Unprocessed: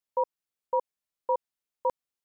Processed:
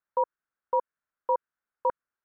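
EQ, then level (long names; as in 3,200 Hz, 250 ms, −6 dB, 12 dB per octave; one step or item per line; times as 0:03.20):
low-pass with resonance 1,500 Hz, resonance Q 4.1
dynamic equaliser 780 Hz, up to −8 dB, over −43 dBFS, Q 3.9
0.0 dB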